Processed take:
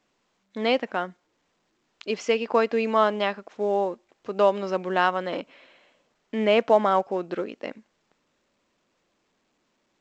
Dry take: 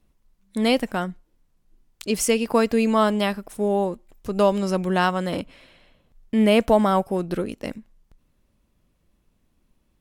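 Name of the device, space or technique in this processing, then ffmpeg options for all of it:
telephone: -af "highpass=360,lowpass=3.2k" -ar 16000 -c:a pcm_alaw

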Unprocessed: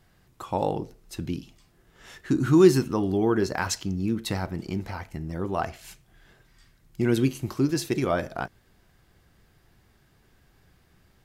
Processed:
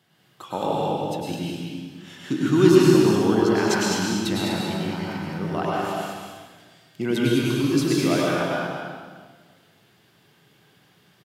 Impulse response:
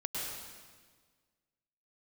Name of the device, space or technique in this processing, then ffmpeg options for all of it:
stadium PA: -filter_complex "[0:a]highpass=f=130:w=0.5412,highpass=f=130:w=1.3066,equalizer=f=3.2k:t=o:w=0.6:g=8,aecho=1:1:207|247.8:0.501|0.316[a];[1:a]atrim=start_sample=2205[b];[a][b]afir=irnorm=-1:irlink=0"

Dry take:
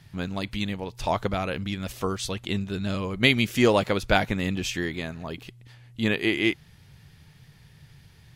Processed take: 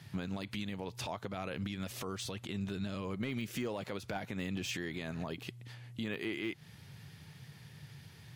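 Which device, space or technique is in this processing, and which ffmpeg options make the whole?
podcast mastering chain: -af "highpass=f=91:w=0.5412,highpass=f=91:w=1.3066,deesser=0.75,acompressor=threshold=-30dB:ratio=2.5,alimiter=level_in=4.5dB:limit=-24dB:level=0:latency=1:release=151,volume=-4.5dB,volume=1dB" -ar 48000 -c:a libmp3lame -b:a 96k

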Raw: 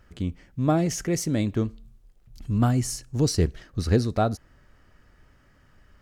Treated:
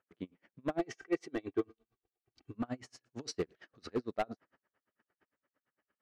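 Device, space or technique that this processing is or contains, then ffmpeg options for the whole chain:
helicopter radio: -filter_complex "[0:a]asettb=1/sr,asplit=3[a][b][c];[a]atrim=end=3.054[d];[b]atrim=start=3.05:end=3.94,asetpts=PTS-STARTPTS,afade=t=in:d=0.004:c=qsin,afade=t=out:st=0.886:d=0.004:c=qsin,highshelf=f=3.6k:g=8.5[e];[c]atrim=start=3.936[f];[d][e]acrossfade=d=0.004:c1=hsin:c2=qsin[g];[g][f]acrossfade=d=0.004:c1=qsin:c2=hsin,agate=range=-13dB:threshold=-52dB:ratio=16:detection=peak,highpass=320,lowpass=2.6k,aeval=exprs='val(0)*pow(10,-35*(0.5-0.5*cos(2*PI*8.8*n/s))/20)':c=same,asoftclip=type=hard:threshold=-24.5dB,asettb=1/sr,asplit=3[h][i][j];[h]atrim=end=0.794[k];[i]atrim=start=0.79:end=2.55,asetpts=PTS-STARTPTS,afade=t=in:d=0.004:c=qsin,afade=t=out:st=1.756:d=0.004:c=qsin,aecho=1:1:2.6:0.87,atrim=end_sample=77616[l];[j]atrim=start=2.546[m];[k][l]acrossfade=d=0.004:c1=hsin:c2=qsin[n];[n][m]acrossfade=d=0.004:c1=qsin:c2=hsin,volume=-2dB"

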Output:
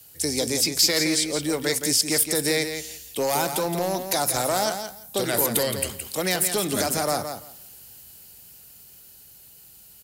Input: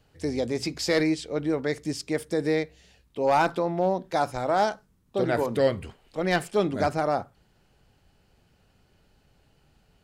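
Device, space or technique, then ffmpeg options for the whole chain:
FM broadcast chain: -filter_complex "[0:a]highpass=51,dynaudnorm=f=280:g=17:m=5dB,acrossover=split=180|700|5000[a][b][c][d];[a]acompressor=threshold=-35dB:ratio=4[e];[b]acompressor=threshold=-24dB:ratio=4[f];[c]acompressor=threshold=-28dB:ratio=4[g];[d]acompressor=threshold=-50dB:ratio=4[h];[e][f][g][h]amix=inputs=4:normalize=0,aemphasis=mode=production:type=75fm,alimiter=limit=-17dB:level=0:latency=1:release=134,asoftclip=type=hard:threshold=-20dB,lowpass=f=15k:w=0.5412,lowpass=f=15k:w=1.3066,aemphasis=mode=production:type=75fm,aecho=1:1:169|338|507:0.398|0.0637|0.0102,volume=2dB"

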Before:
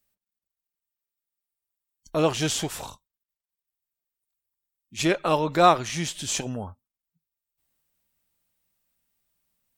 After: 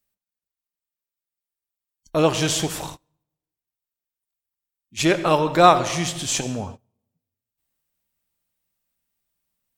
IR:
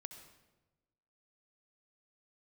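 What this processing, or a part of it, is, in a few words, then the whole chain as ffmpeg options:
keyed gated reverb: -filter_complex "[0:a]asplit=3[a][b][c];[1:a]atrim=start_sample=2205[d];[b][d]afir=irnorm=-1:irlink=0[e];[c]apad=whole_len=431190[f];[e][f]sidechaingate=range=-27dB:threshold=-42dB:ratio=16:detection=peak,volume=7.5dB[g];[a][g]amix=inputs=2:normalize=0,volume=-3dB"

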